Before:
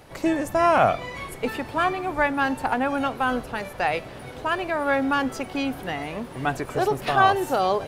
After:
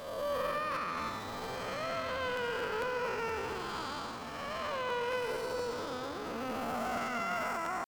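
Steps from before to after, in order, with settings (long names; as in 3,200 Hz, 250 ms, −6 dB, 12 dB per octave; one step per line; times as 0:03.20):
spectrum smeared in time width 388 ms
brickwall limiter −20 dBFS, peak gain reduction 8 dB
dynamic equaliser 1,500 Hz, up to −5 dB, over −44 dBFS, Q 0.73
pitch shifter +10 semitones
on a send at −9 dB: convolution reverb RT60 4.1 s, pre-delay 127 ms
on the sum: regular buffer underruns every 0.23 s, samples 512, repeat, from 0:00.74
level −4.5 dB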